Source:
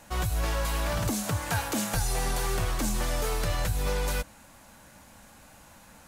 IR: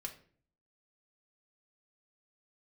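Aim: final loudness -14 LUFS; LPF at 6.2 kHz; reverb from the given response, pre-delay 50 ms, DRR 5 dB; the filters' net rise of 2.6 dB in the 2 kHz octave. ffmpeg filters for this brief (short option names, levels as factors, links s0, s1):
-filter_complex "[0:a]lowpass=6200,equalizer=f=2000:t=o:g=3.5,asplit=2[s0][s1];[1:a]atrim=start_sample=2205,adelay=50[s2];[s1][s2]afir=irnorm=-1:irlink=0,volume=0.75[s3];[s0][s3]amix=inputs=2:normalize=0,volume=5.62"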